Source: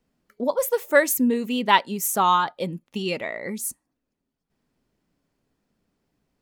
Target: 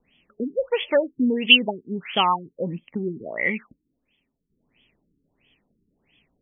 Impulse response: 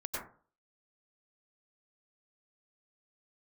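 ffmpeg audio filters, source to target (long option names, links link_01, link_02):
-filter_complex "[0:a]asplit=2[link_01][link_02];[link_02]acompressor=threshold=-32dB:ratio=6,volume=1.5dB[link_03];[link_01][link_03]amix=inputs=2:normalize=0,asplit=3[link_04][link_05][link_06];[link_04]afade=type=out:start_time=0.94:duration=0.02[link_07];[link_05]asuperstop=centerf=1200:order=4:qfactor=2,afade=type=in:start_time=0.94:duration=0.02,afade=type=out:start_time=1.44:duration=0.02[link_08];[link_06]afade=type=in:start_time=1.44:duration=0.02[link_09];[link_07][link_08][link_09]amix=inputs=3:normalize=0,aexciter=amount=13.1:drive=9.2:freq=2400,afftfilt=real='re*lt(b*sr/1024,420*pow(3500/420,0.5+0.5*sin(2*PI*1.5*pts/sr)))':imag='im*lt(b*sr/1024,420*pow(3500/420,0.5+0.5*sin(2*PI*1.5*pts/sr)))':win_size=1024:overlap=0.75,volume=-2.5dB"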